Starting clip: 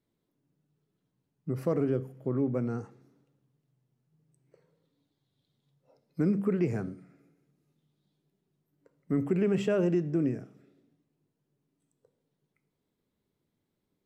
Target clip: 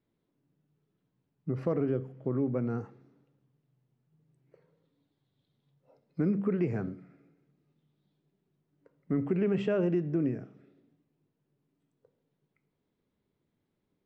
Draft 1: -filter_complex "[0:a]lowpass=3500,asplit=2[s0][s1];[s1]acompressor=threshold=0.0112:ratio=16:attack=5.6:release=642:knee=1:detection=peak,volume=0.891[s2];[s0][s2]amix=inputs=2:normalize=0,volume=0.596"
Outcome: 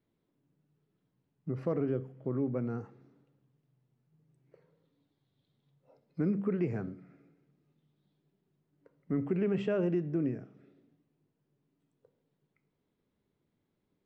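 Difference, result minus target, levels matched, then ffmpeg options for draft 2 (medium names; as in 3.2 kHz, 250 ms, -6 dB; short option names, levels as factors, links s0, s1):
compression: peak gain reduction +11.5 dB
-filter_complex "[0:a]lowpass=3500,asplit=2[s0][s1];[s1]acompressor=threshold=0.0447:ratio=16:attack=5.6:release=642:knee=1:detection=peak,volume=0.891[s2];[s0][s2]amix=inputs=2:normalize=0,volume=0.596"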